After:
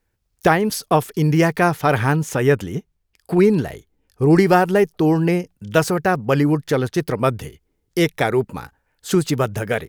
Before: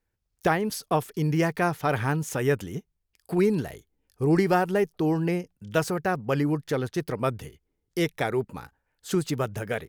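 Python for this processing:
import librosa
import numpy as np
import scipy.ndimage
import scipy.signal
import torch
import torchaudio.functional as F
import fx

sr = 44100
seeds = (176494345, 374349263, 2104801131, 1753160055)

y = fx.high_shelf(x, sr, hz=5200.0, db=-5.5, at=(2.15, 4.3))
y = y * 10.0 ** (8.0 / 20.0)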